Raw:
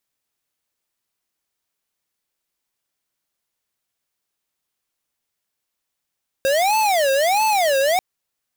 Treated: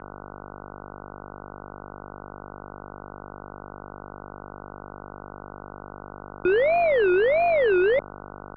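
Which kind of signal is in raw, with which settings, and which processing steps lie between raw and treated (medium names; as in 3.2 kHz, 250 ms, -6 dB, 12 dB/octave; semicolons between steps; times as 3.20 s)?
siren wail 537–877 Hz 1.5 per s square -17.5 dBFS 1.54 s
peaking EQ 2 kHz -3.5 dB 3 oct; mains buzz 50 Hz, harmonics 33, -39 dBFS -2 dB/octave; mistuned SSB -180 Hz 170–2800 Hz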